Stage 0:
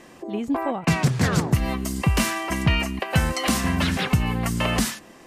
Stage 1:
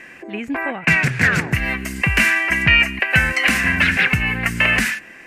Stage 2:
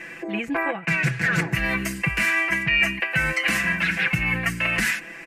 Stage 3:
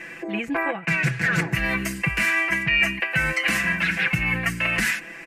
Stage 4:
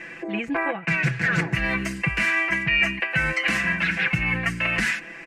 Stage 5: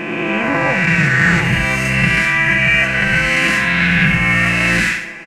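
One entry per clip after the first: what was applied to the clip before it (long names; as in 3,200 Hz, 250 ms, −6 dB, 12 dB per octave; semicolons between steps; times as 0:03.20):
flat-topped bell 2,000 Hz +16 dB 1.1 octaves; level −1 dB
reversed playback; downward compressor, threshold −22 dBFS, peak gain reduction 12.5 dB; reversed playback; comb filter 6 ms, depth 83%
no processing that can be heard
high-frequency loss of the air 54 metres
peak hold with a rise ahead of every peak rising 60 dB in 2.45 s; on a send: repeating echo 69 ms, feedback 42%, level −7 dB; on the sum: level +3.5 dB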